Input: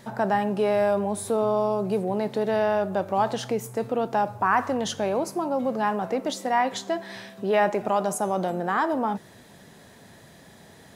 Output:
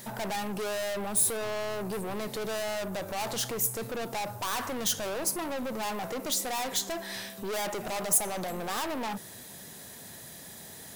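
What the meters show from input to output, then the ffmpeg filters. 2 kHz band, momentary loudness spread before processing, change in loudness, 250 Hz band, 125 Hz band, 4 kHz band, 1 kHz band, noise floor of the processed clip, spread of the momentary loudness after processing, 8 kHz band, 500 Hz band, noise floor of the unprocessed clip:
−5.5 dB, 6 LU, −5.5 dB, −9.0 dB, −7.0 dB, +3.0 dB, −10.5 dB, −46 dBFS, 18 LU, +9.0 dB, −10.0 dB, −51 dBFS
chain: -af "aeval=exprs='(tanh(35.5*val(0)+0.2)-tanh(0.2))/35.5':channel_layout=same,aemphasis=mode=production:type=75fm"

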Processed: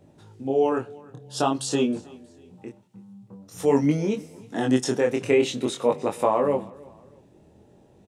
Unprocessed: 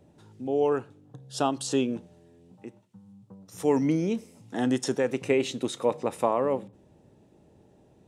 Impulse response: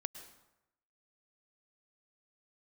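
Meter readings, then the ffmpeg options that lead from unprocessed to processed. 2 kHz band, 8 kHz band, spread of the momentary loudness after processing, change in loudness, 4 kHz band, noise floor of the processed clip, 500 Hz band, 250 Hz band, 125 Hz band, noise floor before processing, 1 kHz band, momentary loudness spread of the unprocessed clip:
+3.5 dB, +3.5 dB, 21 LU, +3.5 dB, +3.5 dB, −56 dBFS, +3.5 dB, +3.0 dB, +4.0 dB, −59 dBFS, +3.5 dB, 14 LU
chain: -af "flanger=delay=19.5:depth=6:speed=0.48,aecho=1:1:317|634:0.0708|0.0255,volume=6.5dB"

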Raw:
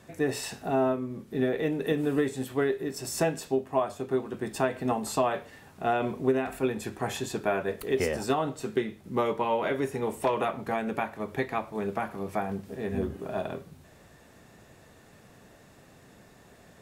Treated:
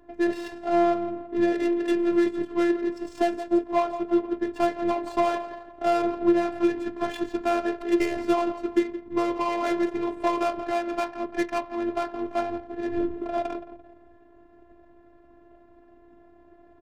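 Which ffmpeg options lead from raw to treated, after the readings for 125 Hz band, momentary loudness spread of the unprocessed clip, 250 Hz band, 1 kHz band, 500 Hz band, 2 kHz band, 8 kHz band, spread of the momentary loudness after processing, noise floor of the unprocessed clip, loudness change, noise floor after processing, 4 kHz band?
−11.0 dB, 6 LU, +6.5 dB, +3.5 dB, +2.5 dB, +0.5 dB, can't be measured, 7 LU, −55 dBFS, +3.5 dB, −54 dBFS, 0.0 dB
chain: -filter_complex "[0:a]aecho=1:1:170|340|510|680:0.211|0.0951|0.0428|0.0193,acrossover=split=360[link_01][link_02];[link_02]asoftclip=type=tanh:threshold=-23dB[link_03];[link_01][link_03]amix=inputs=2:normalize=0,adynamicsmooth=sensitivity=7:basefreq=710,afftfilt=real='hypot(re,im)*cos(PI*b)':imag='0':win_size=512:overlap=0.75,volume=7.5dB"

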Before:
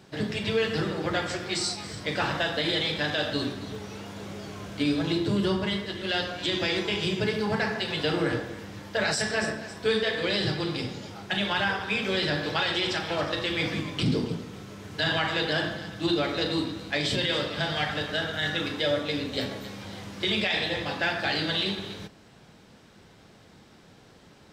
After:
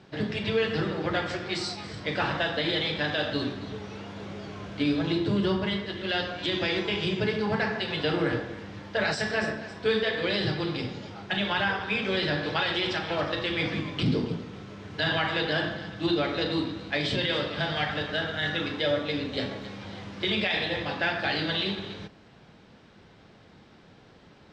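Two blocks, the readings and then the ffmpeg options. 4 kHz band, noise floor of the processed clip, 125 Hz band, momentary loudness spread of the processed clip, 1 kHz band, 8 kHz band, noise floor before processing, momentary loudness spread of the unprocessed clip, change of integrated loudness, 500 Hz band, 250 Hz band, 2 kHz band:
−1.5 dB, −54 dBFS, 0.0 dB, 11 LU, 0.0 dB, −9.5 dB, −54 dBFS, 12 LU, −0.5 dB, 0.0 dB, 0.0 dB, 0.0 dB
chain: -af "lowpass=4300"

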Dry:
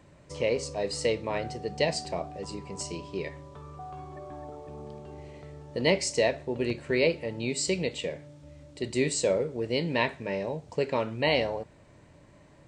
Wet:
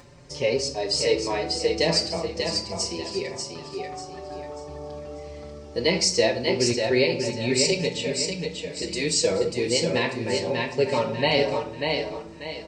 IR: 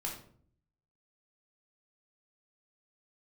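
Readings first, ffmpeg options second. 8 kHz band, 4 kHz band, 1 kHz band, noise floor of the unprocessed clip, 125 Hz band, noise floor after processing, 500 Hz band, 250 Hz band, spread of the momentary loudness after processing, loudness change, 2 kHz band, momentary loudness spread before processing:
+8.0 dB, +10.0 dB, +4.5 dB, −56 dBFS, +4.0 dB, −41 dBFS, +5.0 dB, +4.5 dB, 16 LU, +5.0 dB, +4.0 dB, 18 LU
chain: -filter_complex "[0:a]equalizer=frequency=5200:width_type=o:width=0.64:gain=10.5,acompressor=mode=upward:threshold=-48dB:ratio=2.5,aecho=1:1:591|1182|1773|2364:0.562|0.197|0.0689|0.0241,asplit=2[link_01][link_02];[1:a]atrim=start_sample=2205[link_03];[link_02][link_03]afir=irnorm=-1:irlink=0,volume=-5dB[link_04];[link_01][link_04]amix=inputs=2:normalize=0,alimiter=level_in=9dB:limit=-1dB:release=50:level=0:latency=1,asplit=2[link_05][link_06];[link_06]adelay=5.2,afreqshift=0.28[link_07];[link_05][link_07]amix=inputs=2:normalize=1,volume=-6dB"

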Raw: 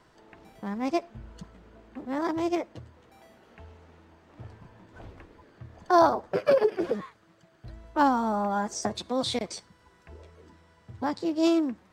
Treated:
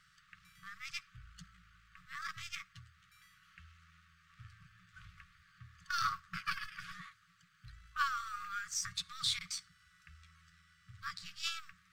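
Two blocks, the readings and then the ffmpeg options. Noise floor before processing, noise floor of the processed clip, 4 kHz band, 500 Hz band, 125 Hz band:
−61 dBFS, −69 dBFS, −1.5 dB, below −40 dB, −12.0 dB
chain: -af "aeval=exprs='if(lt(val(0),0),0.708*val(0),val(0))':channel_layout=same,lowshelf=frequency=410:gain=-9.5,afftfilt=real='re*(1-between(b*sr/4096,190,1100))':imag='im*(1-between(b*sr/4096,190,1100))':win_size=4096:overlap=0.75"

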